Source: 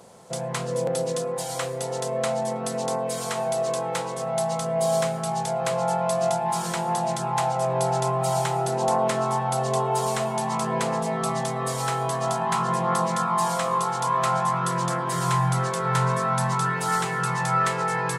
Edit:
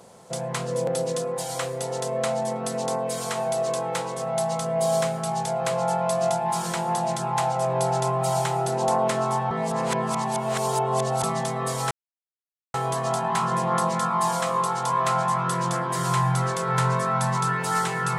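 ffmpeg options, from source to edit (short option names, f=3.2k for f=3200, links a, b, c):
-filter_complex "[0:a]asplit=4[a][b][c][d];[a]atrim=end=9.512[e];[b]atrim=start=9.508:end=11.232,asetpts=PTS-STARTPTS,areverse[f];[c]atrim=start=11.228:end=11.91,asetpts=PTS-STARTPTS,afade=t=out:st=0.678:d=0.004:c=hsin,apad=pad_dur=0.83[g];[d]atrim=start=11.91,asetpts=PTS-STARTPTS,afade=t=in:d=0.004:c=hsin[h];[e][f]acrossfade=d=0.004:c1=hsin:c2=hsin[i];[g][h]concat=n=2:v=0:a=1[j];[i][j]acrossfade=d=0.004:c1=hsin:c2=hsin"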